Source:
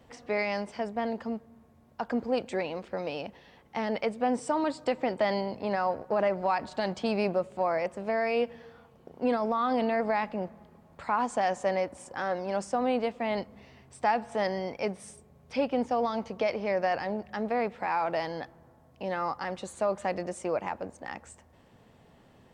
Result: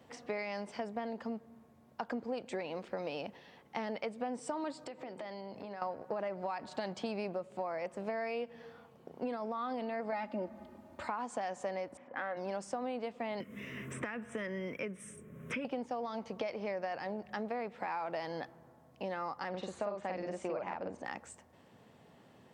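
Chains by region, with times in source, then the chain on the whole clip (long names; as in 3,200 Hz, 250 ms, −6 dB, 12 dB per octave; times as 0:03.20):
0:04.86–0:05.82: downward compressor 8 to 1, threshold −39 dBFS + mains-hum notches 60/120/180/240/300/360/420/480/540 Hz
0:10.12–0:11.08: low-shelf EQ 330 Hz +5.5 dB + comb filter 3.3 ms, depth 94%
0:11.97–0:12.37: loudspeaker in its box 150–2,900 Hz, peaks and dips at 170 Hz −9 dB, 260 Hz +5 dB, 380 Hz −9 dB, 870 Hz −4 dB, 2,000 Hz +6 dB + one half of a high-frequency compander decoder only
0:13.40–0:15.65: phaser with its sweep stopped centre 1,900 Hz, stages 4 + multiband upward and downward compressor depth 100%
0:19.49–0:21.04: low-pass filter 4,600 Hz + double-tracking delay 49 ms −2 dB
whole clip: high-pass filter 120 Hz 12 dB per octave; downward compressor, threshold −33 dBFS; level −1.5 dB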